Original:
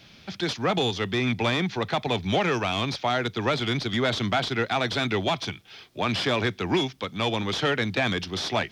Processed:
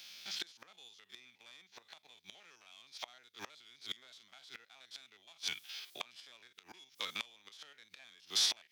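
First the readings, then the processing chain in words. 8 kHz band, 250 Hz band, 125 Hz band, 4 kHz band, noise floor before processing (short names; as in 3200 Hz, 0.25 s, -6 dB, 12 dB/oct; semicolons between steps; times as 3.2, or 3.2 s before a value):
-2.5 dB, -36.5 dB, under -40 dB, -11.0 dB, -51 dBFS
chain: stepped spectrum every 50 ms; flipped gate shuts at -20 dBFS, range -27 dB; differentiator; gain +8 dB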